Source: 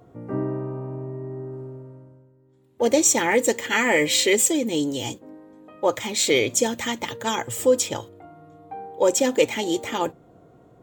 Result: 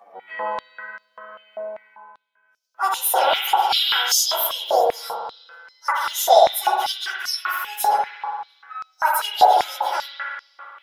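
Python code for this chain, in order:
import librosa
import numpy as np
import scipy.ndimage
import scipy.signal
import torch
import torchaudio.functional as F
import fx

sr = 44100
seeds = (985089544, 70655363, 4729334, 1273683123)

y = fx.pitch_bins(x, sr, semitones=8.5)
y = fx.rev_spring(y, sr, rt60_s=1.9, pass_ms=(57,), chirp_ms=75, drr_db=0.0)
y = fx.filter_held_highpass(y, sr, hz=5.1, low_hz=670.0, high_hz=5100.0)
y = F.gain(torch.from_numpy(y), 1.0).numpy()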